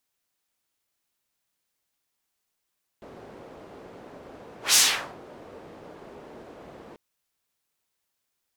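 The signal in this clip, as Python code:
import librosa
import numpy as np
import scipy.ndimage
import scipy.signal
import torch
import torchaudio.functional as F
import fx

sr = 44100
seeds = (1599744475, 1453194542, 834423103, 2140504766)

y = fx.whoosh(sr, seeds[0], length_s=3.94, peak_s=1.73, rise_s=0.15, fall_s=0.44, ends_hz=460.0, peak_hz=6800.0, q=1.1, swell_db=29)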